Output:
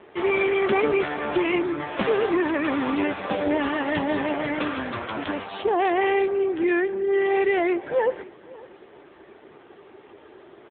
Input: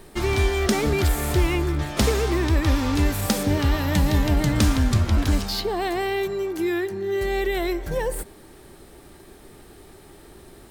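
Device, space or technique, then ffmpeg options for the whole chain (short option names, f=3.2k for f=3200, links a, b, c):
satellite phone: -filter_complex "[0:a]asplit=3[a][b][c];[a]afade=t=out:st=4.26:d=0.02[d];[b]adynamicequalizer=threshold=0.0158:dfrequency=210:dqfactor=1.2:tfrequency=210:tqfactor=1.2:attack=5:release=100:ratio=0.375:range=3:mode=cutabove:tftype=bell,afade=t=in:st=4.26:d=0.02,afade=t=out:st=5.61:d=0.02[e];[c]afade=t=in:st=5.61:d=0.02[f];[d][e][f]amix=inputs=3:normalize=0,highpass=360,lowpass=3.2k,aecho=1:1:551:0.0841,volume=6dB" -ar 8000 -c:a libopencore_amrnb -b:a 5900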